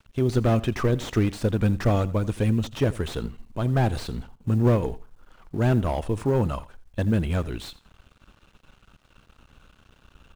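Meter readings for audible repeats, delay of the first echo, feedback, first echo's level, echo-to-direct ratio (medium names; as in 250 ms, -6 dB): 2, 84 ms, 21%, -19.0 dB, -19.0 dB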